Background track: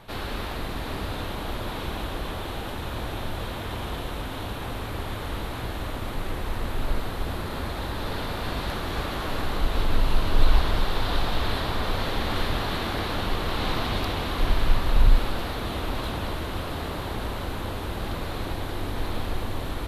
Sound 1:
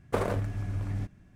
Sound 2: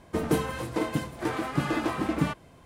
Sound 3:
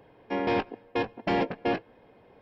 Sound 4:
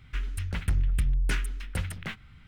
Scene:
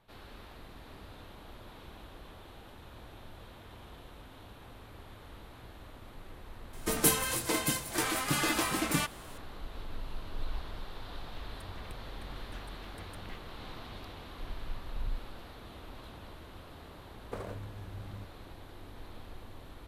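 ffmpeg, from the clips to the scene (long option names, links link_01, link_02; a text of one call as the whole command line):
ffmpeg -i bed.wav -i cue0.wav -i cue1.wav -i cue2.wav -i cue3.wav -filter_complex "[0:a]volume=-18.5dB[link_01];[2:a]crystalizer=i=9:c=0[link_02];[4:a]acompressor=threshold=-39dB:ratio=6:attack=3.2:release=140:knee=1:detection=peak[link_03];[link_02]atrim=end=2.65,asetpts=PTS-STARTPTS,volume=-6.5dB,afade=type=in:duration=0.004:curve=hsin,afade=type=out:start_time=2.646:duration=0.004:curve=hsin,adelay=6730[link_04];[link_03]atrim=end=2.47,asetpts=PTS-STARTPTS,volume=-6.5dB,afade=type=in:duration=0.004:curve=hsin,afade=type=out:start_time=2.466:duration=0.004:curve=hsin,adelay=11230[link_05];[1:a]atrim=end=1.35,asetpts=PTS-STARTPTS,volume=-12.5dB,afade=type=in:duration=0.004:curve=hsin,afade=type=out:start_time=1.346:duration=0.004:curve=hsin,adelay=17190[link_06];[link_01][link_04][link_05][link_06]amix=inputs=4:normalize=0" out.wav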